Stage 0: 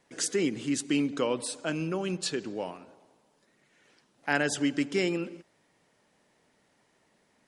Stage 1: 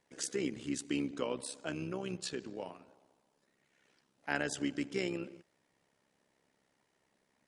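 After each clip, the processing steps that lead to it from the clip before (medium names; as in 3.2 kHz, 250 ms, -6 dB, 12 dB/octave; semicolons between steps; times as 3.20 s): AM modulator 67 Hz, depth 50%; trim -5 dB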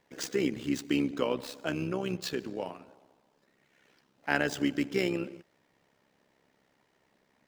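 median filter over 5 samples; trim +6.5 dB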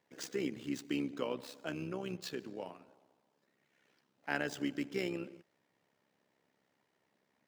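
high-pass 92 Hz; trim -7.5 dB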